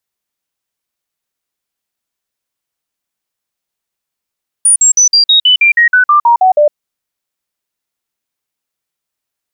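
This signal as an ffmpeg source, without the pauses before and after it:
-f lavfi -i "aevalsrc='0.631*clip(min(mod(t,0.16),0.11-mod(t,0.16))/0.005,0,1)*sin(2*PI*9500*pow(2,-floor(t/0.16)/3)*mod(t,0.16))':d=2.08:s=44100"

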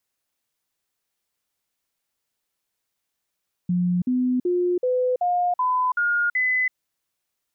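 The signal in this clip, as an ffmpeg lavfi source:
-f lavfi -i "aevalsrc='0.119*clip(min(mod(t,0.38),0.33-mod(t,0.38))/0.005,0,1)*sin(2*PI*178*pow(2,floor(t/0.38)/2)*mod(t,0.38))':d=3.04:s=44100"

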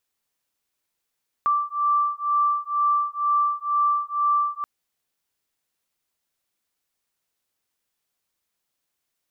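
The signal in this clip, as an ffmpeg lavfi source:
-f lavfi -i "aevalsrc='0.075*(sin(2*PI*1170*t)+sin(2*PI*1172.1*t))':d=3.18:s=44100"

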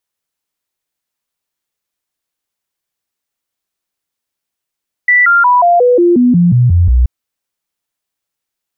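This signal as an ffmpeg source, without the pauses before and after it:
-f lavfi -i "aevalsrc='0.562*clip(min(mod(t,0.18),0.18-mod(t,0.18))/0.005,0,1)*sin(2*PI*1970*pow(2,-floor(t/0.18)/2)*mod(t,0.18))':d=1.98:s=44100"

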